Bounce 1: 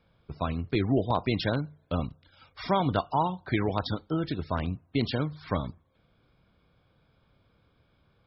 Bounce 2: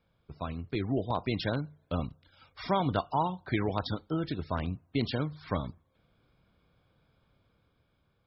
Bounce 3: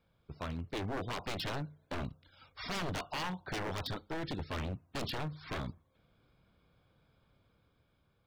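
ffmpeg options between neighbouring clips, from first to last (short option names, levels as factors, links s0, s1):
-af "dynaudnorm=f=340:g=7:m=1.58,volume=0.473"
-af "aeval=exprs='0.0299*(abs(mod(val(0)/0.0299+3,4)-2)-1)':c=same,volume=0.891"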